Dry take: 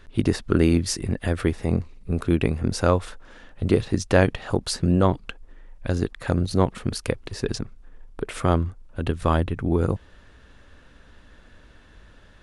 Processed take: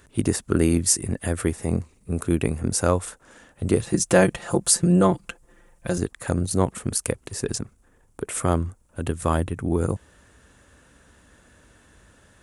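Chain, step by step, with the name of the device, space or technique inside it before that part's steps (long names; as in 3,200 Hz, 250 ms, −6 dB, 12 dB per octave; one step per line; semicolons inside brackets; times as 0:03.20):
budget condenser microphone (high-pass filter 62 Hz 12 dB per octave; high shelf with overshoot 5,900 Hz +11.5 dB, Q 1.5)
0:03.84–0:05.98: comb filter 5.8 ms, depth 91%
level −1 dB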